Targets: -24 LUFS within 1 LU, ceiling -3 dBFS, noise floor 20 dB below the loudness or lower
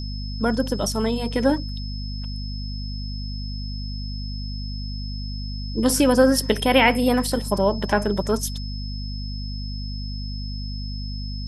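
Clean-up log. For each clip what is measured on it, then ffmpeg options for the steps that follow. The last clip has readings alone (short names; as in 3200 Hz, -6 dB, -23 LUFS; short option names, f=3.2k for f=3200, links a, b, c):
hum 50 Hz; harmonics up to 250 Hz; hum level -27 dBFS; steady tone 5200 Hz; tone level -37 dBFS; loudness -24.5 LUFS; peak -2.5 dBFS; loudness target -24.0 LUFS
-> -af "bandreject=f=50:t=h:w=6,bandreject=f=100:t=h:w=6,bandreject=f=150:t=h:w=6,bandreject=f=200:t=h:w=6,bandreject=f=250:t=h:w=6"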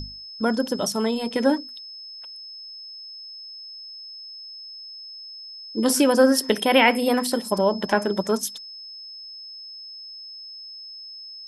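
hum none; steady tone 5200 Hz; tone level -37 dBFS
-> -af "bandreject=f=5.2k:w=30"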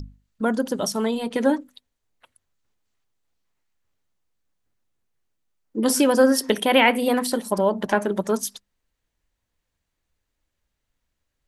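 steady tone none; loudness -21.5 LUFS; peak -2.5 dBFS; loudness target -24.0 LUFS
-> -af "volume=-2.5dB"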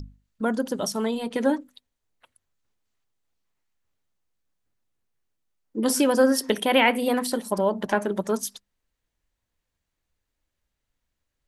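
loudness -24.0 LUFS; peak -5.0 dBFS; noise floor -82 dBFS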